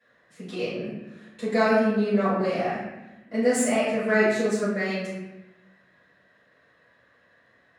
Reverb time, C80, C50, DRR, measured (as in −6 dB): 1.0 s, 3.0 dB, −0.5 dB, −14.5 dB